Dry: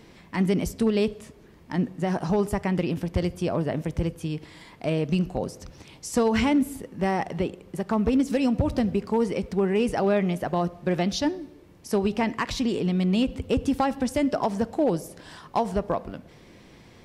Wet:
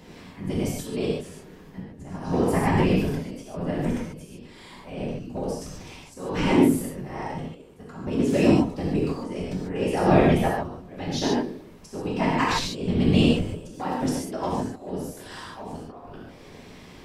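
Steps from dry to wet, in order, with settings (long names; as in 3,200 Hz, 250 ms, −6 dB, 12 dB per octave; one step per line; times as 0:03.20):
volume swells 552 ms
random phases in short frames
reverb whose tail is shaped and stops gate 170 ms flat, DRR −5 dB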